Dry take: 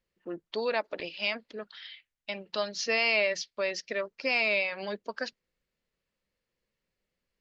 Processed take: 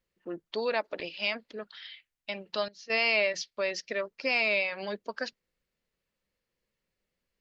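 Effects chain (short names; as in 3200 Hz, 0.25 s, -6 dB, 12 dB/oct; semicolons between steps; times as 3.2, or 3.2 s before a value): 2.68–3.34 gate -27 dBFS, range -16 dB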